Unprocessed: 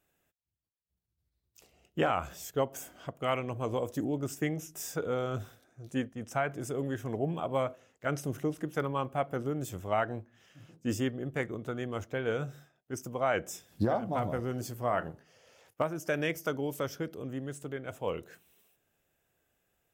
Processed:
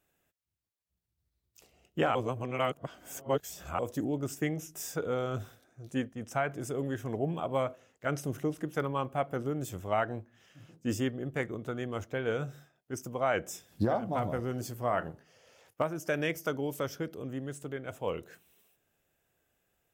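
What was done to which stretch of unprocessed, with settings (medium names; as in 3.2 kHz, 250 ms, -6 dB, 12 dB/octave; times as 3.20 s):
2.15–3.79 s: reverse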